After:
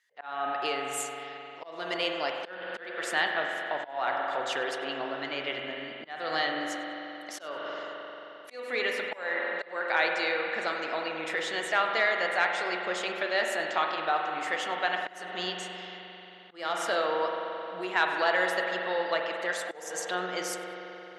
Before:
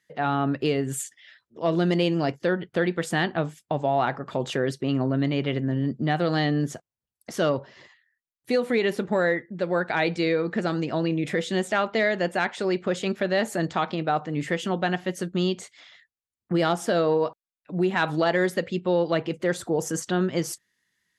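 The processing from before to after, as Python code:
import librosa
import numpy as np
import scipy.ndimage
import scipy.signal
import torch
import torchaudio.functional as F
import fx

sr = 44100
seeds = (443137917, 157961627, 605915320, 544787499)

p1 = fx.rev_spring(x, sr, rt60_s=3.7, pass_ms=(44,), chirp_ms=70, drr_db=1.5)
p2 = fx.auto_swell(p1, sr, attack_ms=300.0)
p3 = scipy.signal.sosfilt(scipy.signal.butter(2, 800.0, 'highpass', fs=sr, output='sos'), p2)
p4 = fx.high_shelf(p3, sr, hz=10000.0, db=-8.0)
y = p4 + fx.echo_feedback(p4, sr, ms=98, feedback_pct=31, wet_db=-22, dry=0)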